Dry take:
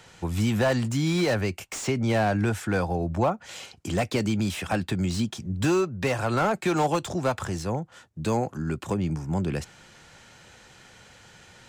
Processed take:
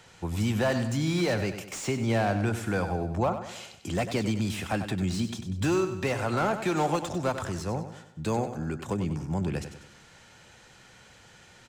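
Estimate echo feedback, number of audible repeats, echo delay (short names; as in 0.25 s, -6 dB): 46%, 4, 96 ms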